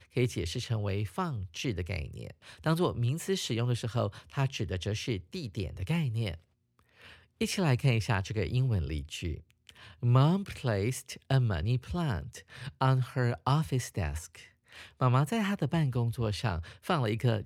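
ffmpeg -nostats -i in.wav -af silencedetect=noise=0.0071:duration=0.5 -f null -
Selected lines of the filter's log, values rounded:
silence_start: 6.35
silence_end: 7.02 | silence_duration: 0.66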